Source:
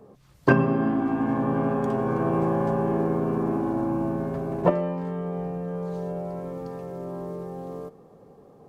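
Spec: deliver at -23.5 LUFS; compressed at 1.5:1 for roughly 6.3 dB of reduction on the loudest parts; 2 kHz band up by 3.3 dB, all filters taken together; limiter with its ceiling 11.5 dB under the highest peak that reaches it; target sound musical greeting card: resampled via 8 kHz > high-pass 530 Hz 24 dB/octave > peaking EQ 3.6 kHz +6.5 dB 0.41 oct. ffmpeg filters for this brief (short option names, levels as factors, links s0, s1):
-af "equalizer=f=2000:t=o:g=4.5,acompressor=threshold=0.0316:ratio=1.5,alimiter=limit=0.0891:level=0:latency=1,aresample=8000,aresample=44100,highpass=f=530:w=0.5412,highpass=f=530:w=1.3066,equalizer=f=3600:t=o:w=0.41:g=6.5,volume=5.01"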